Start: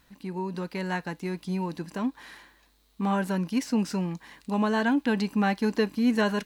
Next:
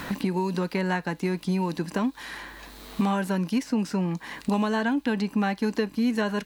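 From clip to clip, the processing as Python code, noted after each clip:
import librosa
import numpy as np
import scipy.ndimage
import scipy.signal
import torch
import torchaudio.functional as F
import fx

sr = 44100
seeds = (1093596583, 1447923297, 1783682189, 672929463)

y = fx.band_squash(x, sr, depth_pct=100)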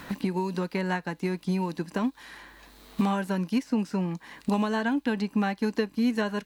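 y = fx.upward_expand(x, sr, threshold_db=-36.0, expansion=1.5)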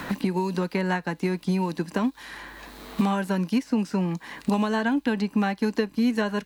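y = fx.band_squash(x, sr, depth_pct=40)
y = y * librosa.db_to_amplitude(2.5)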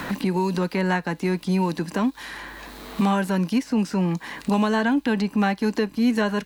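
y = fx.transient(x, sr, attack_db=-4, sustain_db=2)
y = y * librosa.db_to_amplitude(3.5)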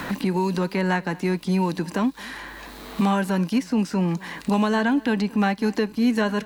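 y = x + 10.0 ** (-22.5 / 20.0) * np.pad(x, (int(227 * sr / 1000.0), 0))[:len(x)]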